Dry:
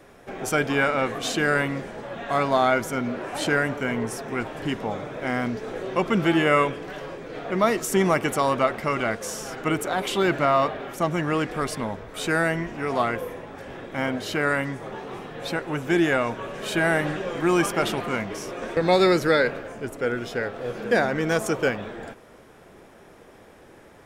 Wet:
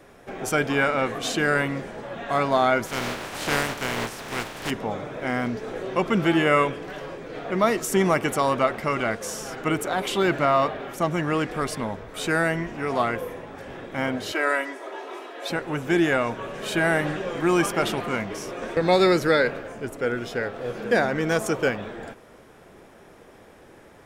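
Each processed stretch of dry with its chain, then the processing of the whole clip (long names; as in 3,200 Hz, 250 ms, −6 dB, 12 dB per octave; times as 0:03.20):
0:02.85–0:04.69: compressing power law on the bin magnitudes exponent 0.34 + low-pass filter 3,300 Hz 6 dB per octave
0:14.32–0:15.50: high-pass filter 360 Hz 24 dB per octave + comb filter 3.1 ms, depth 54%
whole clip: no processing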